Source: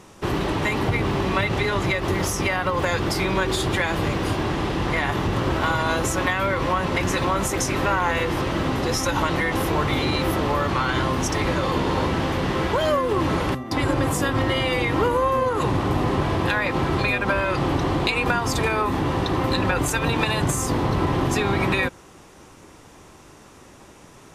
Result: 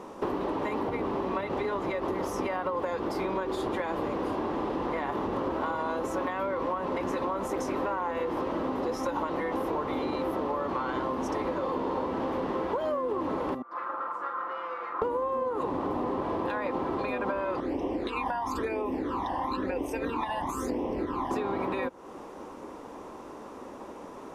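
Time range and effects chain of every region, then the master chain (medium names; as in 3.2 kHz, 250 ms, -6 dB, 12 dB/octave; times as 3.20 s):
13.62–15.02 s: comb filter that takes the minimum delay 5.8 ms + band-pass filter 1.3 kHz, Q 6.9 + doubling 45 ms -7 dB
17.60–21.31 s: peaking EQ 140 Hz -10.5 dB 0.9 oct + phase shifter stages 12, 1 Hz, lowest notch 400–1400 Hz
whole clip: graphic EQ 125/250/500/1000/8000 Hz -6/+11/+11/+11/-4 dB; compression, threshold -22 dBFS; trim -6.5 dB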